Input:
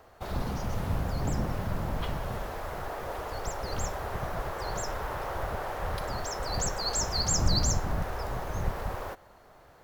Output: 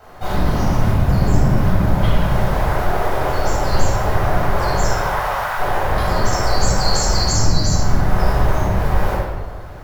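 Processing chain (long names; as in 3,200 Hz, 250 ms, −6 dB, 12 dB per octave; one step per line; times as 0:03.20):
0:04.87–0:05.56: high-pass filter 400 Hz → 1,000 Hz 24 dB per octave
downward compressor, threshold −30 dBFS, peak gain reduction 12 dB
rectangular room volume 1,000 cubic metres, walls mixed, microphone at 7.5 metres
level +3 dB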